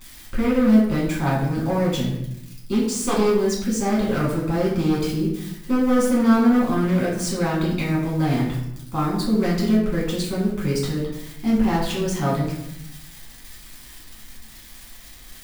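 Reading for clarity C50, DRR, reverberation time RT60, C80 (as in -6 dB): 3.5 dB, -7.0 dB, 0.80 s, 6.5 dB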